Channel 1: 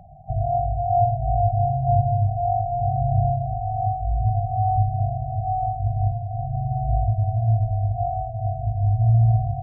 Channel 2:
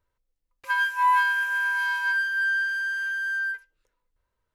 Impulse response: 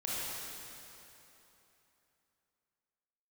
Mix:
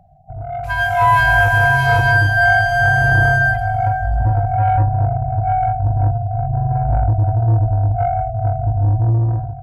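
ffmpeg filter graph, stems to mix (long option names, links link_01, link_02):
-filter_complex "[0:a]bandreject=frequency=60:width_type=h:width=6,bandreject=frequency=120:width_type=h:width=6,asoftclip=type=tanh:threshold=-17dB,volume=-4.5dB[link_01];[1:a]volume=-3.5dB,asplit=2[link_02][link_03];[link_03]volume=-14.5dB[link_04];[2:a]atrim=start_sample=2205[link_05];[link_04][link_05]afir=irnorm=-1:irlink=0[link_06];[link_01][link_02][link_06]amix=inputs=3:normalize=0,dynaudnorm=framelen=350:gausssize=5:maxgain=13dB"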